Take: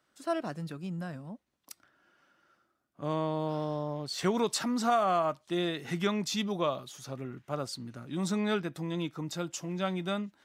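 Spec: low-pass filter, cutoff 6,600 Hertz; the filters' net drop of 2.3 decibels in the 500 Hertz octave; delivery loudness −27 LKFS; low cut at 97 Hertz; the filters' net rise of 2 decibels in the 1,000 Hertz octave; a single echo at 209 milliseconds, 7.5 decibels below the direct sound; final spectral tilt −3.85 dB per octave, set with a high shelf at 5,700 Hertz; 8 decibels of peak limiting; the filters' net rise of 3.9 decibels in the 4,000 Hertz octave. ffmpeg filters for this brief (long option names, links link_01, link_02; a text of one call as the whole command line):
ffmpeg -i in.wav -af "highpass=97,lowpass=6600,equalizer=frequency=500:width_type=o:gain=-5,equalizer=frequency=1000:width_type=o:gain=4.5,equalizer=frequency=4000:width_type=o:gain=7.5,highshelf=frequency=5700:gain=-7.5,alimiter=limit=-22dB:level=0:latency=1,aecho=1:1:209:0.422,volume=6.5dB" out.wav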